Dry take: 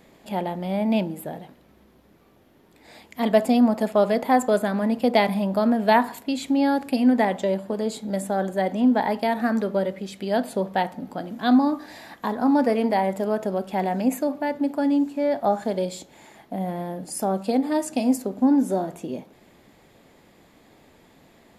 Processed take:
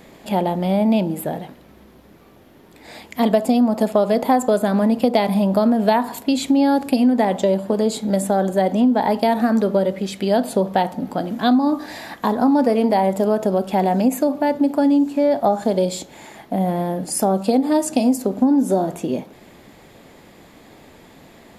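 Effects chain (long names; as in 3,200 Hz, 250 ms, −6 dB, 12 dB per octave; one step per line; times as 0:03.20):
dynamic equaliser 1,900 Hz, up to −6 dB, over −42 dBFS, Q 1.3
downward compressor, threshold −21 dBFS, peak gain reduction 9 dB
level +8.5 dB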